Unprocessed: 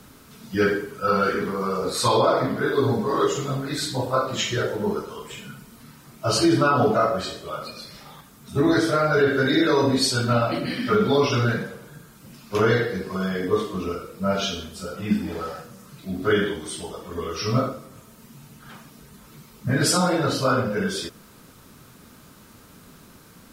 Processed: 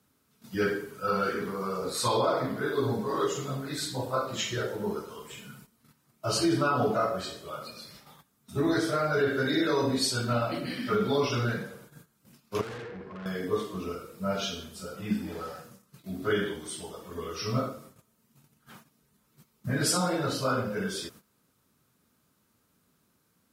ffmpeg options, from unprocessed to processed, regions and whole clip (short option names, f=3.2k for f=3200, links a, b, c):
-filter_complex "[0:a]asettb=1/sr,asplit=3[a][b][c];[a]atrim=end=12.614[d];[b]atrim=start=12.61:end=13.26,asetpts=PTS-STARTPTS,afade=t=in:d=0.004:c=qsin,afade=t=out:st=0.646:d=0.004:c=qsin,lowpass=2k,aeval=exprs='(tanh(35.5*val(0)+0.4)-tanh(0.4))/35.5':c=same[e];[c]atrim=start=13.256[f];[d][e]acrossfade=d=0.004:c1=hsin:c2=qsin[g];[g][f]acrossfade=d=0.004:c1=qsin:c2=hsin,agate=range=-15dB:threshold=-43dB:ratio=16:detection=peak,highpass=59,equalizer=f=13k:w=0.51:g=4,volume=-7dB"